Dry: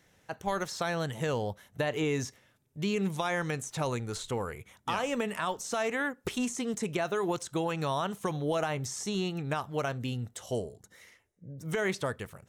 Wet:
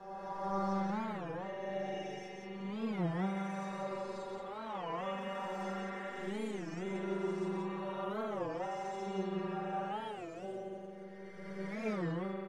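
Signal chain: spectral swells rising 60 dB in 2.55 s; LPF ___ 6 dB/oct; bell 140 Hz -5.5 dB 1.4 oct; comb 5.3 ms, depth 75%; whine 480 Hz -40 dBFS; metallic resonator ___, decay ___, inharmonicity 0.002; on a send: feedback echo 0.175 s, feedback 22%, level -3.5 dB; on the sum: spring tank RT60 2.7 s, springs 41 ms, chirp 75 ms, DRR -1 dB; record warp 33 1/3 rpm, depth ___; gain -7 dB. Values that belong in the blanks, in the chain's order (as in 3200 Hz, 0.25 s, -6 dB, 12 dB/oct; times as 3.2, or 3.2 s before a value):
1500 Hz, 190 Hz, 0.21 s, 250 cents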